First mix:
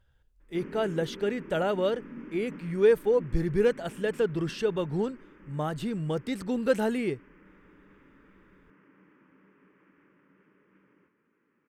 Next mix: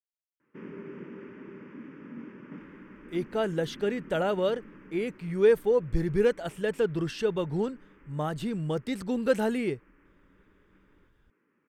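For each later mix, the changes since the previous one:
speech: entry +2.60 s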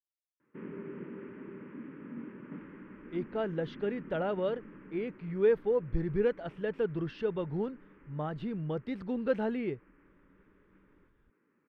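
speech -4.0 dB; master: add distance through air 310 m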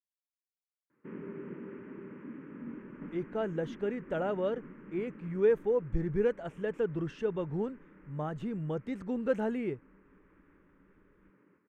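background: entry +0.50 s; master: add resonant high shelf 5.6 kHz +8 dB, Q 3

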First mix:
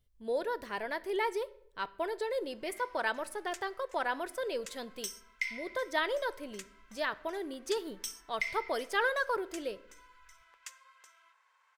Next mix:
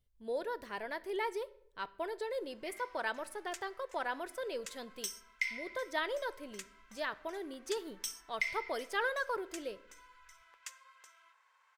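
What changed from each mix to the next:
speech -4.0 dB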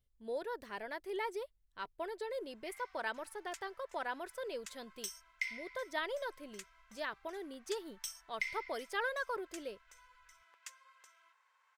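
reverb: off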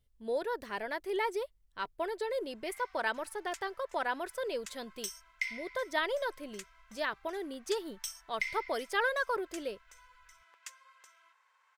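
speech +6.0 dB; background +3.0 dB

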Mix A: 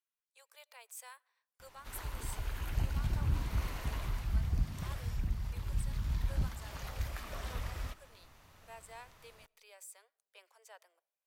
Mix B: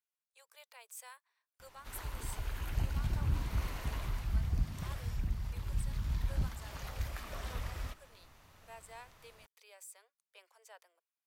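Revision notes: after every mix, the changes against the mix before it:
reverb: off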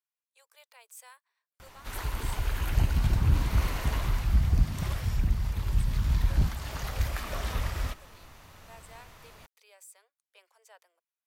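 background +9.0 dB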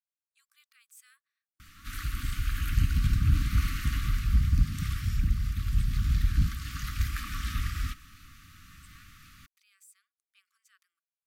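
speech -5.5 dB; master: add brick-wall FIR band-stop 320–1100 Hz

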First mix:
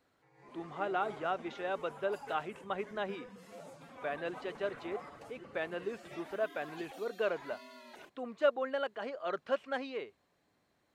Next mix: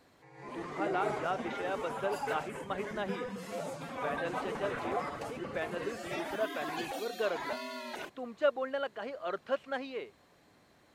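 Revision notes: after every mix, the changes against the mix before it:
background +11.5 dB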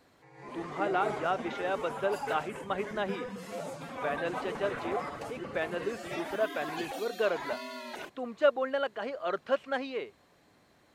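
speech +4.0 dB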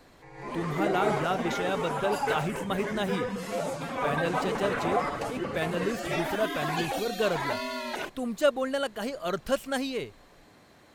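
speech: remove band-pass 390–2400 Hz; background +7.5 dB

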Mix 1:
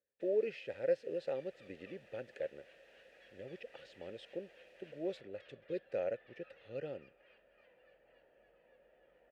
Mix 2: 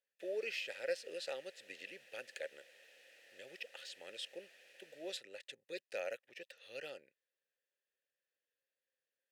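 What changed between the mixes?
speech: add tilt EQ +3 dB/octave; second sound: muted; master: add tilt EQ +3.5 dB/octave

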